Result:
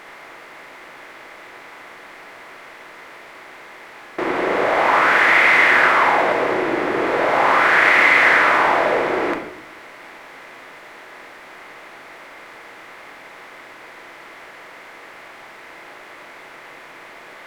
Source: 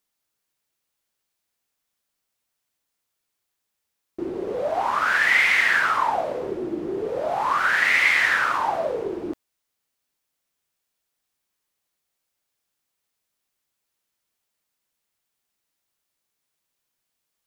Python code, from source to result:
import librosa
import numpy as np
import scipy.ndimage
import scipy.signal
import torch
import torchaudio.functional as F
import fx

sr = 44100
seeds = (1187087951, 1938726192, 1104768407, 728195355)

y = fx.bin_compress(x, sr, power=0.4)
y = fx.bass_treble(y, sr, bass_db=-2, treble_db=-5)
y = fx.room_shoebox(y, sr, seeds[0], volume_m3=140.0, walls='mixed', distance_m=0.74)
y = y * 10.0 ** (-1.5 / 20.0)